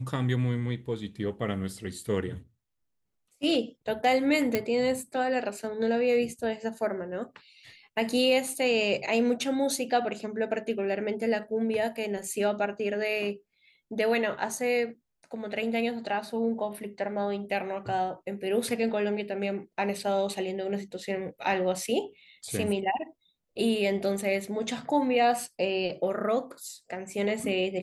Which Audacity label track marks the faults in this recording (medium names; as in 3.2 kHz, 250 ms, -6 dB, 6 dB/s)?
4.550000	4.550000	pop -12 dBFS